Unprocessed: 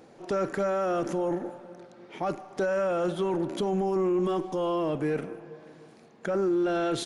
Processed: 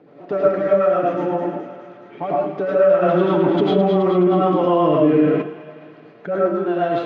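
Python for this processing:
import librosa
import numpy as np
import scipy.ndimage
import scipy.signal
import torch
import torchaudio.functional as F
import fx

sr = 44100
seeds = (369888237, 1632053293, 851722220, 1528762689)

y = scipy.signal.sosfilt(scipy.signal.butter(2, 130.0, 'highpass', fs=sr, output='sos'), x)
y = fx.high_shelf(y, sr, hz=5200.0, db=-10.0)
y = fx.notch(y, sr, hz=5500.0, q=22.0)
y = y + 0.48 * np.pad(y, (int(6.9 * sr / 1000.0), 0))[:len(y)]
y = fx.rotary(y, sr, hz=8.0)
y = fx.air_absorb(y, sr, metres=280.0)
y = fx.echo_wet_highpass(y, sr, ms=211, feedback_pct=62, hz=1800.0, wet_db=-6)
y = fx.rev_freeverb(y, sr, rt60_s=0.46, hf_ratio=0.55, predelay_ms=65, drr_db=-5.0)
y = fx.env_flatten(y, sr, amount_pct=50, at=(3.01, 5.41), fade=0.02)
y = y * 10.0 ** (6.0 / 20.0)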